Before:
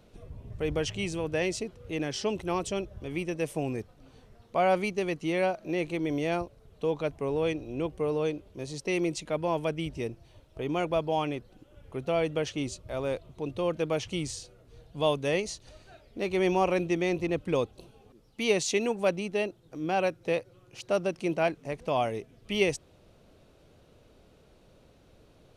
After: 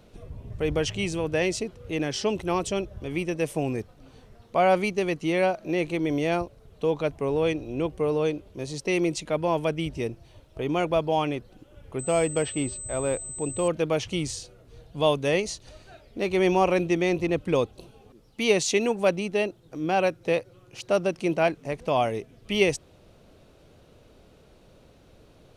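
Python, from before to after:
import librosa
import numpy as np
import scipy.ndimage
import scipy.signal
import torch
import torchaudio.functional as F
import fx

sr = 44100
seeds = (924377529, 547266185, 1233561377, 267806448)

y = fx.pwm(x, sr, carrier_hz=8100.0, at=(11.99, 13.68))
y = y * 10.0 ** (4.0 / 20.0)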